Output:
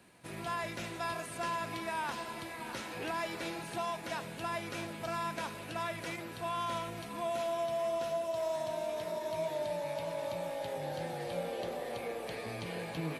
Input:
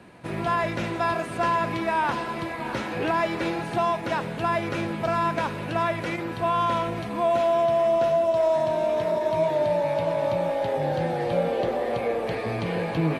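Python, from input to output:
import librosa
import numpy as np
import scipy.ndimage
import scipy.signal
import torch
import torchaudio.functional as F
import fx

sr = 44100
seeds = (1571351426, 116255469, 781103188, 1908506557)

y = F.preemphasis(torch.from_numpy(x), 0.8).numpy()
y = fx.echo_alternate(y, sr, ms=325, hz=840.0, feedback_pct=76, wet_db=-13.0)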